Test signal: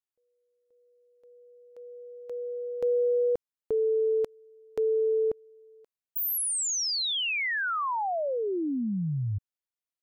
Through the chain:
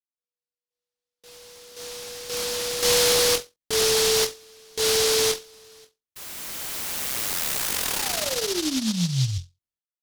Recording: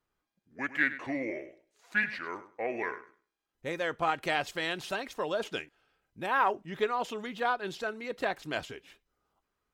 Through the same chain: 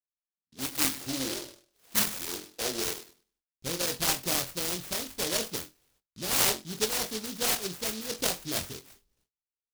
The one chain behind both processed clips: RIAA curve playback; on a send: flutter echo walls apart 3.9 m, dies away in 0.22 s; on the sum: gate with hold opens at -50 dBFS, closes at -54 dBFS, hold 258 ms, range -35 dB; tilt EQ +2.5 dB/octave; in parallel at -2 dB: gain riding 2 s; on the sum: delay time shaken by noise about 4.5 kHz, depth 0.33 ms; trim -5 dB

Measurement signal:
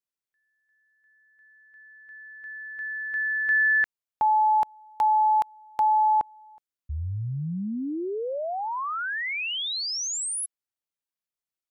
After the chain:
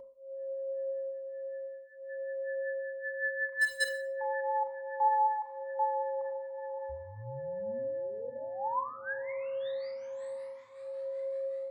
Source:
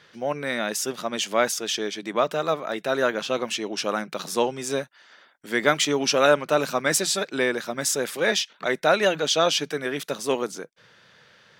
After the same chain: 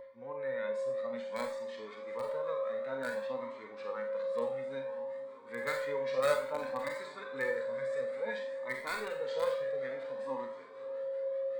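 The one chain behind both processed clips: pre-emphasis filter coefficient 0.9; echo that smears into a reverb 554 ms, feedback 67%, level -15.5 dB; whistle 540 Hz -43 dBFS; LFO low-pass sine 5.3 Hz 810–1700 Hz; in parallel at -8 dB: bit crusher 4-bit; on the sum: rippled EQ curve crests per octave 0.98, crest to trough 11 dB; Schroeder reverb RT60 0.43 s, combs from 30 ms, DRR 7.5 dB; harmonic-percussive split percussive -13 dB; Shepard-style flanger rising 0.57 Hz; trim +5 dB

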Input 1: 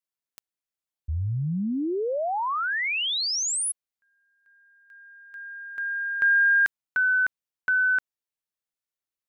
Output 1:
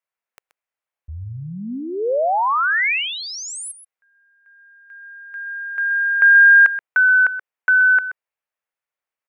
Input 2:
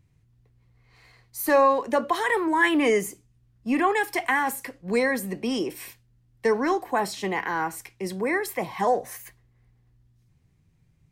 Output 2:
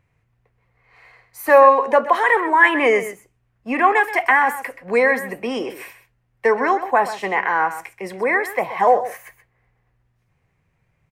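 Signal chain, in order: high-order bell 1.1 kHz +12.5 dB 2.9 oct; on a send: delay 128 ms -13 dB; on the sum: dynamic bell 250 Hz, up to +4 dB, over -36 dBFS, Q 3.7; trim -4 dB

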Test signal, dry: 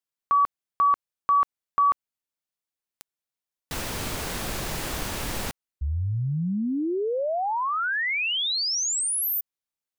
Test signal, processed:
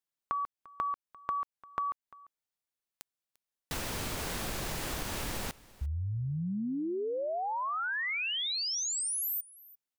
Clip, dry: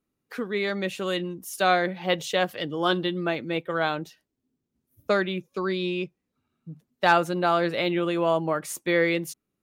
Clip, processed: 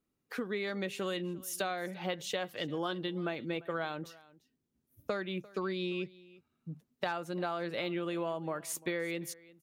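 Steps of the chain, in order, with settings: compression 12:1, threshold -29 dBFS; on a send: delay 346 ms -21.5 dB; on the sum: trim -2.5 dB

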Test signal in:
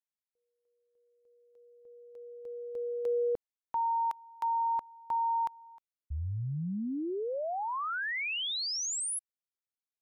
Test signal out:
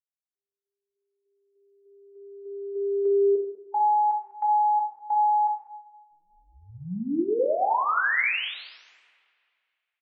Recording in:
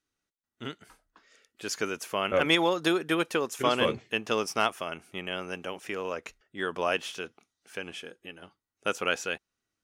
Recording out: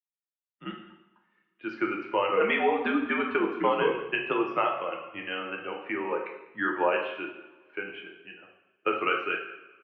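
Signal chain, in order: expander on every frequency bin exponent 1.5; compression 6:1, threshold -31 dBFS; delay 196 ms -20 dB; mistuned SSB -80 Hz 330–2700 Hz; two-slope reverb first 0.74 s, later 2.2 s, from -21 dB, DRR 0 dB; trim +8.5 dB

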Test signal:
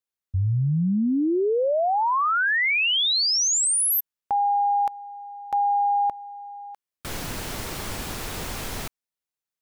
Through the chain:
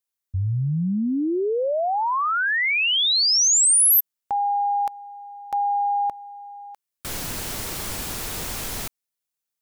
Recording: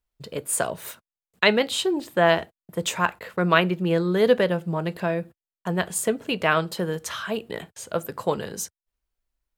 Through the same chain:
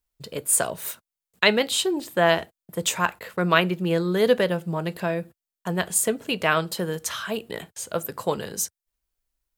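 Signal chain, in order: treble shelf 4.8 kHz +8 dB; trim -1 dB

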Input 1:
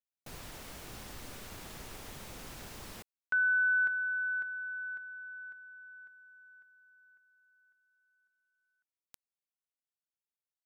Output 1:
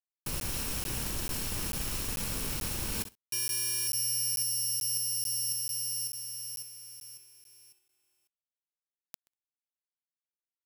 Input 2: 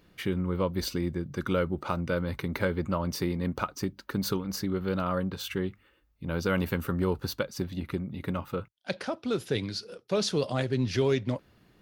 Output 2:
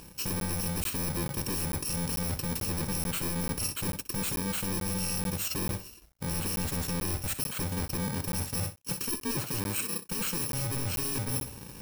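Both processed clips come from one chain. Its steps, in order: bit-reversed sample order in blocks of 64 samples; in parallel at -4.5 dB: sine folder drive 18 dB, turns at -11.5 dBFS; on the sum: flutter echo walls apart 11 m, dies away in 0.31 s; crossover distortion -54 dBFS; reverse; compression 8:1, threshold -30 dBFS; reverse; crackling interface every 0.44 s, samples 512, zero, from 0.40 s

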